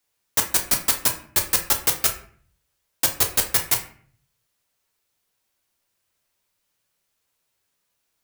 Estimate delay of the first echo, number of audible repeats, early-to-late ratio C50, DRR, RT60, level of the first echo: none, none, 10.0 dB, 2.5 dB, 0.50 s, none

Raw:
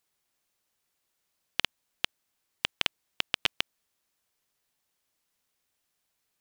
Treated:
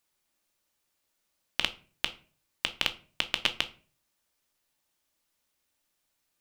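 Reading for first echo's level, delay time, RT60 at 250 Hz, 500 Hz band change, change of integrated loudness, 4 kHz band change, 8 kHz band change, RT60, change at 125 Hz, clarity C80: none, none, 0.50 s, +1.5 dB, +1.0 dB, +1.0 dB, +1.0 dB, 0.40 s, 0.0 dB, 21.5 dB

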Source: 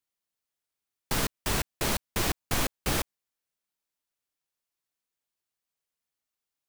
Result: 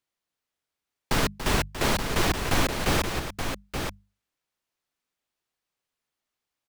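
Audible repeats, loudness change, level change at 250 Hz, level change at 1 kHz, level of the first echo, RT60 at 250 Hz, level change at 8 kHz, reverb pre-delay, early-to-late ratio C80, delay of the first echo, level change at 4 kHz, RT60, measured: 2, +3.0 dB, +6.0 dB, +6.5 dB, -10.5 dB, none, +0.5 dB, none, none, 0.286 s, +4.0 dB, none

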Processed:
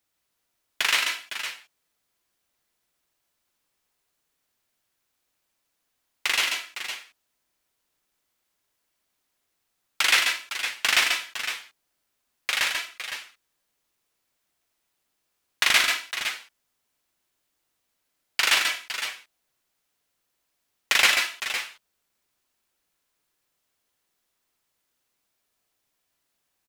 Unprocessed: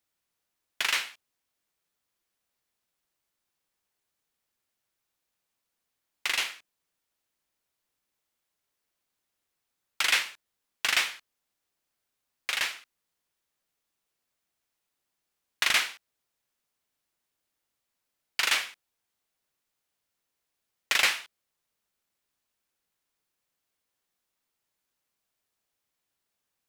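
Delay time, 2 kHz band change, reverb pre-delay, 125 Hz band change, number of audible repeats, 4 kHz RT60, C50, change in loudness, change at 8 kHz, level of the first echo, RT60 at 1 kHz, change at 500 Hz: 58 ms, +6.0 dB, none, n/a, 3, none, none, +3.5 dB, +6.0 dB, -11.5 dB, none, +6.0 dB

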